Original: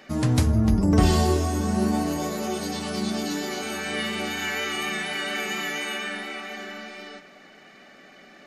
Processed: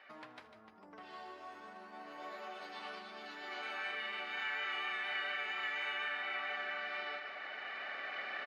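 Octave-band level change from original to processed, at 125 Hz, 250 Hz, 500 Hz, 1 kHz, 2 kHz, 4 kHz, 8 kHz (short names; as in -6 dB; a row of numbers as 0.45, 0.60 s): under -40 dB, -33.5 dB, -19.5 dB, -11.5 dB, -7.0 dB, -12.0 dB, under -30 dB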